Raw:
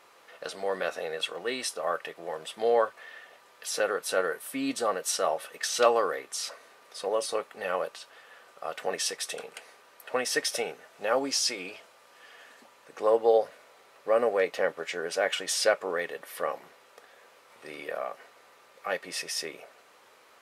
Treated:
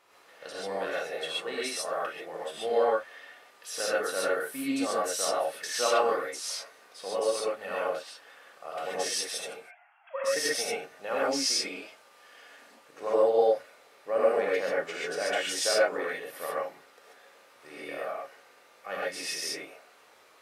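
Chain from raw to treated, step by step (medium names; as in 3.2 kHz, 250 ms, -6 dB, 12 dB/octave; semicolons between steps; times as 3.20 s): 9.56–10.24 s: formants replaced by sine waves; gated-style reverb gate 160 ms rising, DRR -6.5 dB; trim -7.5 dB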